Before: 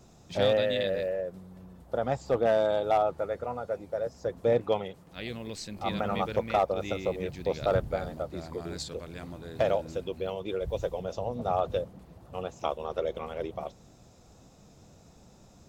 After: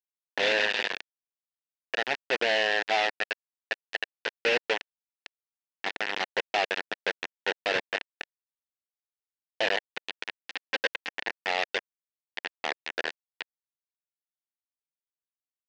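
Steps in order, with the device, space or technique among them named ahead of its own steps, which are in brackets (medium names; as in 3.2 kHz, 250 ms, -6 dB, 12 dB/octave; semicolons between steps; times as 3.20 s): hand-held game console (bit crusher 4-bit; cabinet simulation 400–4800 Hz, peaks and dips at 590 Hz -7 dB, 1.2 kHz -10 dB, 1.8 kHz +8 dB, 2.7 kHz +6 dB); 10.39–11.13 s: comb 3.8 ms, depth 96%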